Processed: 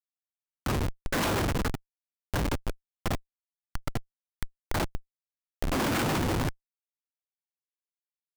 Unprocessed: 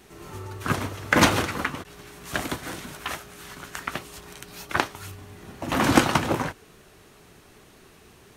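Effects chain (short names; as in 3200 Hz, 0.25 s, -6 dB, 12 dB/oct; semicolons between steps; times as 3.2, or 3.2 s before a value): Schmitt trigger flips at -25.5 dBFS; upward compressor, threshold -37 dBFS; gain +1.5 dB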